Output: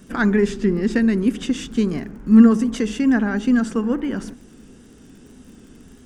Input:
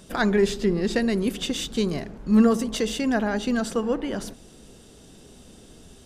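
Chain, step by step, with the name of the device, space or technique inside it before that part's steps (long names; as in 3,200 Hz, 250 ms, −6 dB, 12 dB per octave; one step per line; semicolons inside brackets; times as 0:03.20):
lo-fi chain (low-pass filter 6,600 Hz 12 dB per octave; tape wow and flutter; surface crackle 40 per second −41 dBFS)
graphic EQ with 15 bands 250 Hz +8 dB, 630 Hz −7 dB, 1,600 Hz +4 dB, 4,000 Hz −9 dB, 10,000 Hz +4 dB
level +1 dB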